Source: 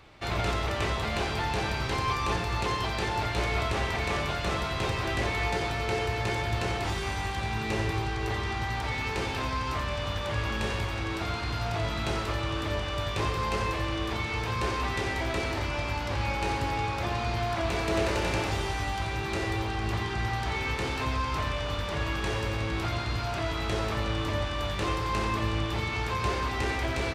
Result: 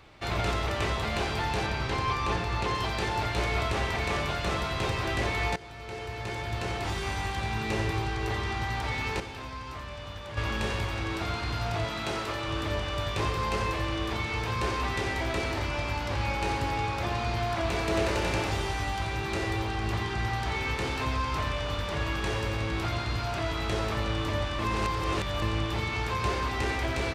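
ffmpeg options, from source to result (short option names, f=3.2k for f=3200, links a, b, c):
-filter_complex "[0:a]asettb=1/sr,asplit=3[a][b][c];[a]atrim=end=1.664[d];[b]atrim=start=1.66:end=2.75,asetpts=PTS-STARTPTS,afade=t=in:d=0.004:c=qsin,afade=t=out:st=1.086:d=0.004:c=qsin,highshelf=f=8.1k:g=-9.5[e];[c]atrim=start=2.746[f];[d][e]acrossfade=d=0.004:c1=hsin:c2=qsin[g];[g][f]acrossfade=d=0.004:c1=qsin:c2=hsin,asettb=1/sr,asplit=3[h][i][j];[h]atrim=end=11.844[k];[i]atrim=start=11.84:end=12.48,asetpts=PTS-STARTPTS,afade=t=in:d=0.004:c=qsin,afade=t=out:st=0.636:d=0.004:c=qsin,highpass=f=200:p=1[l];[j]atrim=start=12.476[m];[k][l]acrossfade=d=0.004:c1=hsin:c2=qsin[n];[n][m]acrossfade=d=0.004:c1=qsin:c2=hsin,asplit=6[o][p][q][r][s][t];[o]atrim=end=5.56,asetpts=PTS-STARTPTS,afade=t=out:st=5.556:d=0.004:c=hsin:silence=0.125893[u];[p]atrim=start=5.56:end=9.202,asetpts=PTS-STARTPTS,afade=t=in:d=1.56:silence=0.125893[v];[q]atrim=start=9.198:end=10.372,asetpts=PTS-STARTPTS,volume=-8.5dB[w];[r]atrim=start=10.368:end=24.592[x];[s]atrim=start=24.588:end=25.422,asetpts=PTS-STARTPTS,areverse[y];[t]atrim=start=25.418[z];[u][v]concat=n=2:v=0:a=1[aa];[aa][w]acrossfade=d=0.004:c1=hsin:c2=hsin[ab];[ab][x]acrossfade=d=0.004:c1=hsin:c2=hsin[ac];[ac][y]acrossfade=d=0.004:c1=hsin:c2=hsin[ad];[ad][z]acrossfade=d=0.004:c1=hsin:c2=hsin"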